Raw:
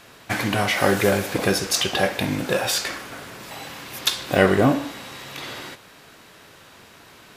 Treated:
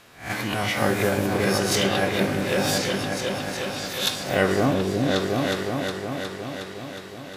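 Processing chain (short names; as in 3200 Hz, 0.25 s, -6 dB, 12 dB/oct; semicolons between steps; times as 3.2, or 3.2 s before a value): spectral swells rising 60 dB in 0.39 s; repeats that get brighter 0.363 s, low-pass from 400 Hz, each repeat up 2 oct, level 0 dB; gain -5.5 dB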